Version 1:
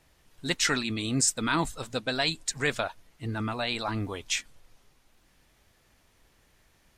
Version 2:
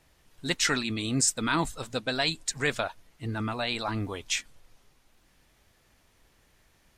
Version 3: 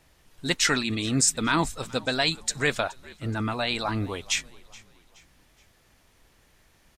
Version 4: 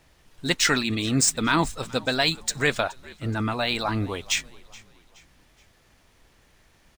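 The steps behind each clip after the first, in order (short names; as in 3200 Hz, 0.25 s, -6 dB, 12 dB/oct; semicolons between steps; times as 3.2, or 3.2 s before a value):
nothing audible
frequency-shifting echo 0.423 s, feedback 43%, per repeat -57 Hz, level -22.5 dB; gain +3 dB
median filter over 3 samples; gain +2 dB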